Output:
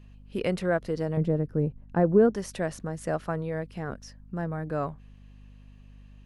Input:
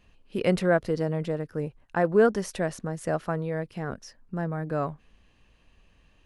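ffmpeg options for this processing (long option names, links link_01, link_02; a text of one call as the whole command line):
ffmpeg -i in.wav -filter_complex "[0:a]alimiter=limit=-13dB:level=0:latency=1:release=424,asettb=1/sr,asplit=3[link_01][link_02][link_03];[link_01]atrim=end=1.174[link_04];[link_02]atrim=start=1.17:end=2.3,asetpts=PTS-STARTPTS,afade=type=in:duration=0.004:curve=qsin,afade=type=out:start_time=1.126:duration=0.004:curve=qsin,tiltshelf=frequency=720:gain=9[link_05];[link_03]atrim=start=2.296[link_06];[link_04][link_05]acrossfade=duration=0.004:curve1=hsin:curve2=qsin[link_07];[link_07][link_06]acrossfade=duration=0.004:curve1=qsin:curve2=hsin,aeval=exprs='val(0)+0.00447*(sin(2*PI*50*n/s)+sin(2*PI*2*50*n/s)/2+sin(2*PI*3*50*n/s)/3+sin(2*PI*4*50*n/s)/4+sin(2*PI*5*50*n/s)/5)':channel_layout=same,volume=-1.5dB" out.wav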